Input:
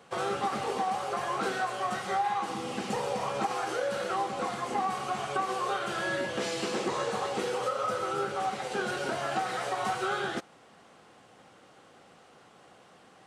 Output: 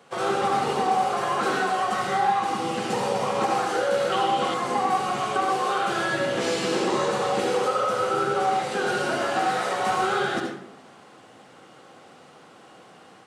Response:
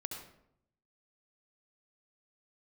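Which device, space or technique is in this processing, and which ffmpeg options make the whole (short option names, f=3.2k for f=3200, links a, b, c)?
far laptop microphone: -filter_complex "[1:a]atrim=start_sample=2205[a];[0:a][a]afir=irnorm=-1:irlink=0,highpass=110,dynaudnorm=f=110:g=3:m=3dB,asettb=1/sr,asplit=3[b][c][d];[b]atrim=end=4.124[e];[c]atrim=start=4.12:end=4.54,asetpts=PTS-STARTPTS,afade=t=in:d=0.004:c=qsin,afade=t=out:st=0.416:d=0.004:c=qsin,equalizer=f=3.1k:w=4.5:g=13[f];[d]atrim=start=4.536[g];[e][f]acrossfade=d=0.004:c1=hsin:c2=qsin[h];[h][g]acrossfade=d=0.004:c1=qsin:c2=hsin,volume=4.5dB"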